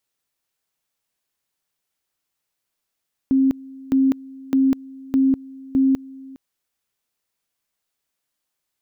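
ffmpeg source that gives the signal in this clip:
-f lavfi -i "aevalsrc='pow(10,(-13-22.5*gte(mod(t,0.61),0.2))/20)*sin(2*PI*267*t)':d=3.05:s=44100"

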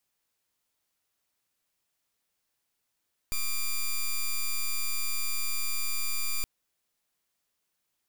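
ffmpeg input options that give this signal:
-f lavfi -i "aevalsrc='0.0398*(2*lt(mod(2380*t,1),0.07)-1)':d=3.12:s=44100"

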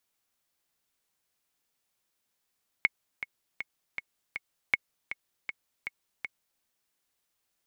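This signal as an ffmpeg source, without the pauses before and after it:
-f lavfi -i "aevalsrc='pow(10,(-9-12*gte(mod(t,5*60/159),60/159))/20)*sin(2*PI*2190*mod(t,60/159))*exp(-6.91*mod(t,60/159)/0.03)':d=3.77:s=44100"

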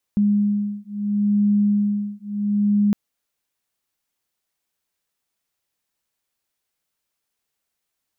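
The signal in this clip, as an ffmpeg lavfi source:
-f lavfi -i "aevalsrc='0.1*(sin(2*PI*205*t)+sin(2*PI*205.74*t))':d=2.76:s=44100"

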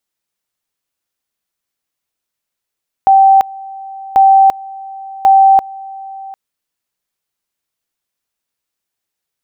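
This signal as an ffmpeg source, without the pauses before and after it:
-f lavfi -i "aevalsrc='pow(10,(-3.5-22*gte(mod(t,1.09),0.34))/20)*sin(2*PI*777*t)':d=3.27:s=44100"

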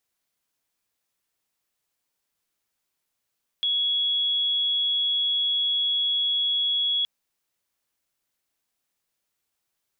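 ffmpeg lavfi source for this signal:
-f lavfi -i "sine=f=3350:d=3.42:r=44100,volume=-2.94dB"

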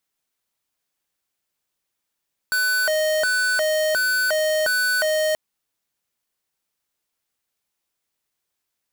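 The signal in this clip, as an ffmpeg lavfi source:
-f lavfi -i "aevalsrc='0.0944*(2*lt(mod((1060.5*t+439.5/1.4*(0.5-abs(mod(1.4*t,1)-0.5))),1),0.5)-1)':d=2.83:s=44100"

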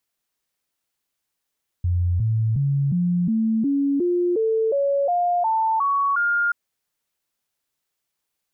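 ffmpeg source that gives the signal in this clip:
-f lavfi -i "aevalsrc='0.133*clip(min(mod(t,0.36),0.36-mod(t,0.36))/0.005,0,1)*sin(2*PI*88.2*pow(2,floor(t/0.36)/3)*mod(t,0.36))':d=4.68:s=44100"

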